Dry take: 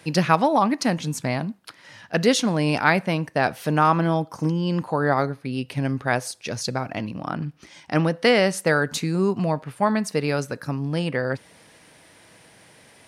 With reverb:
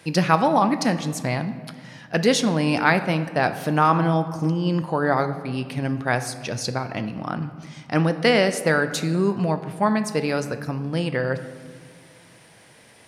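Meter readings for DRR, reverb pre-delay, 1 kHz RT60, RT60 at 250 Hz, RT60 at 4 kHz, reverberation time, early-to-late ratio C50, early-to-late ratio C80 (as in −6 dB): 9.5 dB, 6 ms, 1.8 s, 2.5 s, 1.1 s, 1.9 s, 12.0 dB, 13.0 dB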